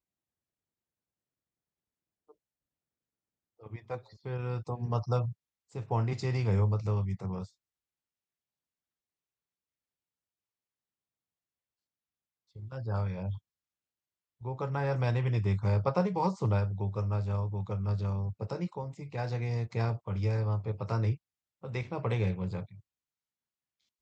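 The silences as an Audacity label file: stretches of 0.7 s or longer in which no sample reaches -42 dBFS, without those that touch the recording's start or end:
7.450000	12.560000	silence
13.380000	14.420000	silence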